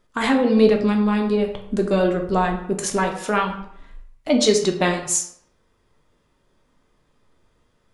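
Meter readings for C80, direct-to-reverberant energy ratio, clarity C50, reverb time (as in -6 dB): 11.0 dB, 2.5 dB, 8.0 dB, 0.70 s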